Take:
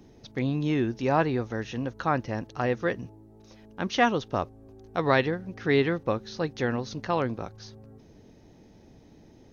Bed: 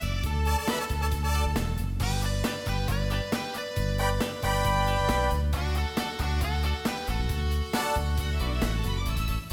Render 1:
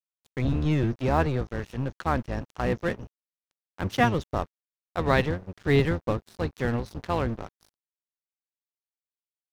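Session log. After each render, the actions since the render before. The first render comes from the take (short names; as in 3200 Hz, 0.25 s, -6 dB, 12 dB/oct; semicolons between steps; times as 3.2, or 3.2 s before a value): octaver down 1 oct, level +3 dB; crossover distortion -36 dBFS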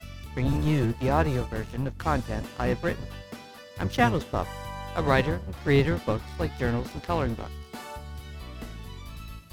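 add bed -12.5 dB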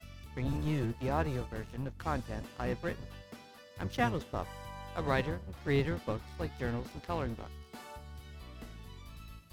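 gain -8.5 dB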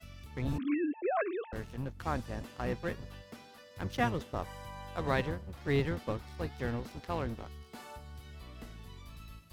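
0.58–1.53 sine-wave speech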